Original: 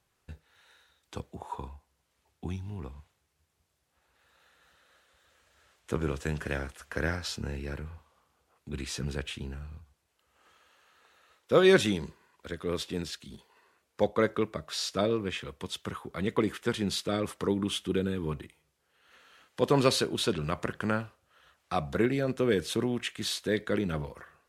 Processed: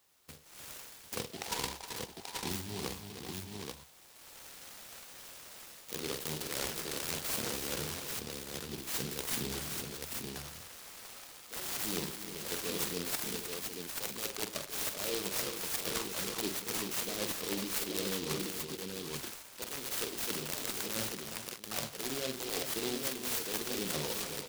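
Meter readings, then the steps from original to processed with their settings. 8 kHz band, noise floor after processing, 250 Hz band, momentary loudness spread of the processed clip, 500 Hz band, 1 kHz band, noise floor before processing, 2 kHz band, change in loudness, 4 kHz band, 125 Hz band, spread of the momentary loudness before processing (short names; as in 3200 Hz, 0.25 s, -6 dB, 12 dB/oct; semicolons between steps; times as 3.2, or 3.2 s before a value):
+6.5 dB, -54 dBFS, -10.0 dB, 13 LU, -11.0 dB, -6.0 dB, -77 dBFS, -5.0 dB, -5.5 dB, -1.0 dB, -11.0 dB, 16 LU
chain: HPF 250 Hz 6 dB/oct; wrapped overs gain 19 dB; tilt +2.5 dB/oct; AGC gain up to 8 dB; limiter -7 dBFS, peak gain reduction 5 dB; reverse; compressor 16:1, threshold -36 dBFS, peak gain reduction 23.5 dB; reverse; spectral delete 8.44–8.88, 940–3000 Hz; tapped delay 46/100/310/388/751/834 ms -6.5/-19.5/-10.5/-9.5/-11.5/-4 dB; noise-modulated delay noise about 3600 Hz, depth 0.2 ms; gain +2.5 dB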